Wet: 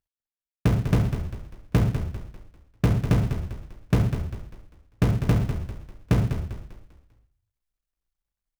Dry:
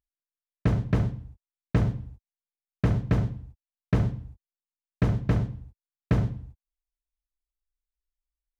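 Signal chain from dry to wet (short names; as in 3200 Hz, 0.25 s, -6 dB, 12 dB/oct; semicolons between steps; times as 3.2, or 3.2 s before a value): switching dead time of 0.29 ms; frequency-shifting echo 0.198 s, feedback 41%, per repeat -33 Hz, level -9 dB; gain +2.5 dB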